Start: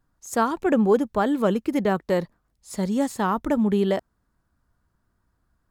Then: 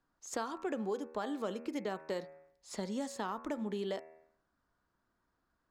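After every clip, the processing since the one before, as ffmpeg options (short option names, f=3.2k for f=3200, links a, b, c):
-filter_complex "[0:a]acrossover=split=230 6800:gain=0.224 1 0.158[a][b][c];[a][b][c]amix=inputs=3:normalize=0,bandreject=f=79.27:t=h:w=4,bandreject=f=158.54:t=h:w=4,bandreject=f=237.81:t=h:w=4,bandreject=f=317.08:t=h:w=4,bandreject=f=396.35:t=h:w=4,bandreject=f=475.62:t=h:w=4,bandreject=f=554.89:t=h:w=4,bandreject=f=634.16:t=h:w=4,bandreject=f=713.43:t=h:w=4,bandreject=f=792.7:t=h:w=4,bandreject=f=871.97:t=h:w=4,bandreject=f=951.24:t=h:w=4,bandreject=f=1.03051k:t=h:w=4,bandreject=f=1.10978k:t=h:w=4,bandreject=f=1.18905k:t=h:w=4,bandreject=f=1.26832k:t=h:w=4,bandreject=f=1.34759k:t=h:w=4,bandreject=f=1.42686k:t=h:w=4,bandreject=f=1.50613k:t=h:w=4,bandreject=f=1.5854k:t=h:w=4,bandreject=f=1.66467k:t=h:w=4,bandreject=f=1.74394k:t=h:w=4,bandreject=f=1.82321k:t=h:w=4,bandreject=f=1.90248k:t=h:w=4,bandreject=f=1.98175k:t=h:w=4,bandreject=f=2.06102k:t=h:w=4,bandreject=f=2.14029k:t=h:w=4,bandreject=f=2.21956k:t=h:w=4,bandreject=f=2.29883k:t=h:w=4,bandreject=f=2.3781k:t=h:w=4,bandreject=f=2.45737k:t=h:w=4,bandreject=f=2.53664k:t=h:w=4,bandreject=f=2.61591k:t=h:w=4,bandreject=f=2.69518k:t=h:w=4,acrossover=split=4200[d][e];[d]acompressor=threshold=-33dB:ratio=4[f];[f][e]amix=inputs=2:normalize=0,volume=-3dB"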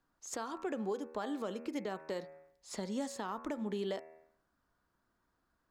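-af "alimiter=level_in=4.5dB:limit=-24dB:level=0:latency=1:release=223,volume=-4.5dB,volume=1dB"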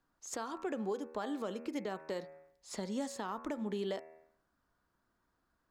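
-af anull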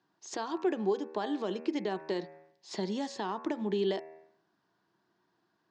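-af "highpass=f=140:w=0.5412,highpass=f=140:w=1.3066,equalizer=f=250:t=q:w=4:g=-9,equalizer=f=350:t=q:w=4:g=6,equalizer=f=530:t=q:w=4:g=-9,equalizer=f=1.3k:t=q:w=4:g=-10,equalizer=f=2.2k:t=q:w=4:g=-4,lowpass=f=5.5k:w=0.5412,lowpass=f=5.5k:w=1.3066,volume=7.5dB"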